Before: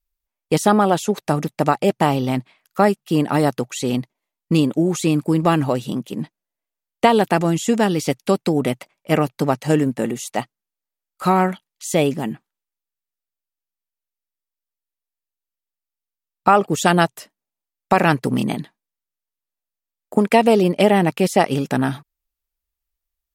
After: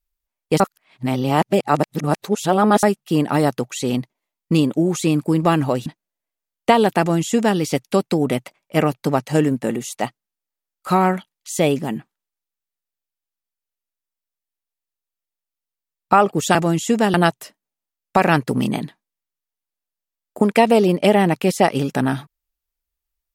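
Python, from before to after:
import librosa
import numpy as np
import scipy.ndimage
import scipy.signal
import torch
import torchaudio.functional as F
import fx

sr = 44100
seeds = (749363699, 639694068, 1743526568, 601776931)

y = fx.edit(x, sr, fx.reverse_span(start_s=0.6, length_s=2.23),
    fx.cut(start_s=5.86, length_s=0.35),
    fx.duplicate(start_s=7.34, length_s=0.59, to_s=16.9), tone=tone)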